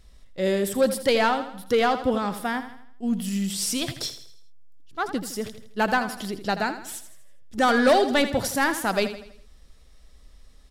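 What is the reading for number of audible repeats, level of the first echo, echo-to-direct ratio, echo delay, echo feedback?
4, −11.5 dB, −10.5 dB, 81 ms, 45%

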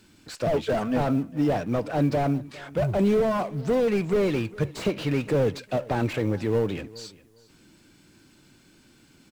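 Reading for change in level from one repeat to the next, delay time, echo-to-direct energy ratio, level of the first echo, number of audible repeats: −14.0 dB, 405 ms, −21.0 dB, −21.0 dB, 2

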